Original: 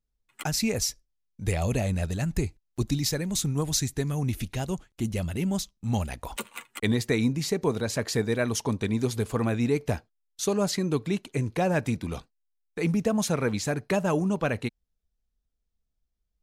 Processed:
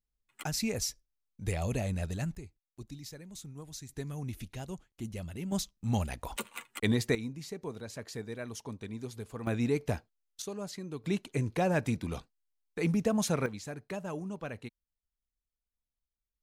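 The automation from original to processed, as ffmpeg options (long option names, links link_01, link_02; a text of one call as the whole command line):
ffmpeg -i in.wav -af "asetnsamples=nb_out_samples=441:pad=0,asendcmd='2.35 volume volume -18.5dB;3.89 volume volume -10.5dB;5.52 volume volume -3dB;7.15 volume volume -14dB;9.47 volume volume -4.5dB;10.42 volume volume -14dB;11.04 volume volume -3.5dB;13.46 volume volume -13dB',volume=-6dB" out.wav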